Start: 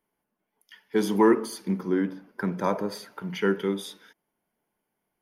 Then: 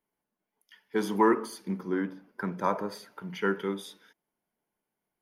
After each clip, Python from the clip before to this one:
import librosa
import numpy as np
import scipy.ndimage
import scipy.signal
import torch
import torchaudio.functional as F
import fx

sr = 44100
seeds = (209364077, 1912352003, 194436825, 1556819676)

y = fx.dynamic_eq(x, sr, hz=1200.0, q=0.97, threshold_db=-39.0, ratio=4.0, max_db=7)
y = F.gain(torch.from_numpy(y), -5.5).numpy()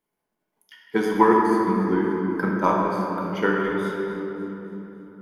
y = fx.transient(x, sr, attack_db=6, sustain_db=-6)
y = fx.echo_feedback(y, sr, ms=284, feedback_pct=52, wet_db=-16)
y = fx.room_shoebox(y, sr, seeds[0], volume_m3=200.0, walls='hard', distance_m=0.64)
y = F.gain(torch.from_numpy(y), 1.5).numpy()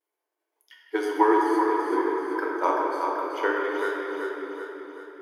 y = fx.vibrato(x, sr, rate_hz=0.61, depth_cents=48.0)
y = fx.brickwall_highpass(y, sr, low_hz=290.0)
y = fx.echo_feedback(y, sr, ms=383, feedback_pct=51, wet_db=-6)
y = F.gain(torch.from_numpy(y), -3.0).numpy()